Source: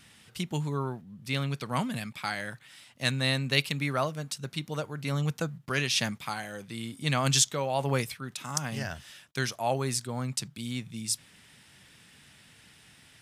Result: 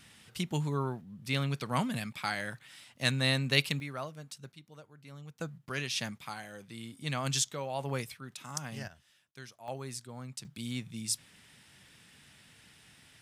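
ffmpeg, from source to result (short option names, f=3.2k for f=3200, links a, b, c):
-af "asetnsamples=n=441:p=0,asendcmd='3.8 volume volume -10.5dB;4.52 volume volume -19dB;5.4 volume volume -7dB;8.88 volume volume -18dB;9.68 volume volume -11dB;10.45 volume volume -2.5dB',volume=-1dB"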